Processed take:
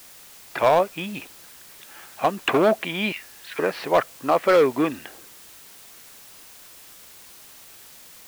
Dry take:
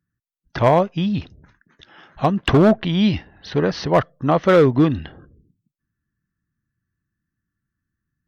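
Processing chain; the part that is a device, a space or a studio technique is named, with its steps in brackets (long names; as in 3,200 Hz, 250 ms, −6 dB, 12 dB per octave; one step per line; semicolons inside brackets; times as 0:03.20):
0:03.12–0:03.59: high-pass filter 1,300 Hz 24 dB per octave
drive-through speaker (band-pass filter 420–2,900 Hz; parametric band 2,400 Hz +9.5 dB 0.24 octaves; hard clipping −10 dBFS, distortion −16 dB; white noise bed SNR 21 dB)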